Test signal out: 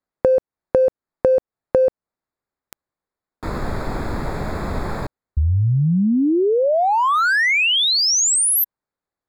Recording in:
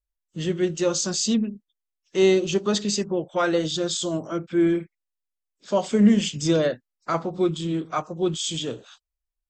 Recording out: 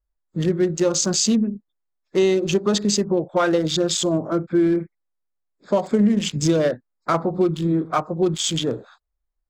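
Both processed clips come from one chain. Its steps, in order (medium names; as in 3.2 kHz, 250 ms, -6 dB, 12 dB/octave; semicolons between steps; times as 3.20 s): local Wiener filter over 15 samples; compression 4:1, threshold -23 dBFS; trim +7.5 dB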